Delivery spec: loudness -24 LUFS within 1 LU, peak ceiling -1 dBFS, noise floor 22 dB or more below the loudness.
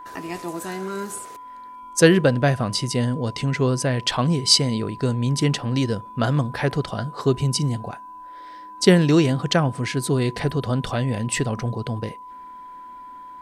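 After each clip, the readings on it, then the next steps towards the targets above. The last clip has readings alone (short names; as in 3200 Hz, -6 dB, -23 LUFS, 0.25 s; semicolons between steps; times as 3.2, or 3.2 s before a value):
steady tone 1000 Hz; tone level -37 dBFS; loudness -21.5 LUFS; peak -2.0 dBFS; loudness target -24.0 LUFS
-> notch 1000 Hz, Q 30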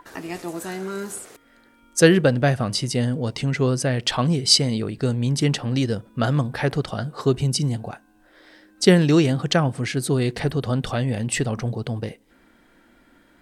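steady tone none; loudness -22.0 LUFS; peak -2.0 dBFS; loudness target -24.0 LUFS
-> gain -2 dB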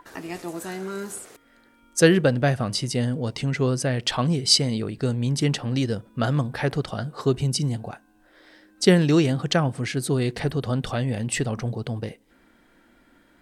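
loudness -24.0 LUFS; peak -4.0 dBFS; noise floor -59 dBFS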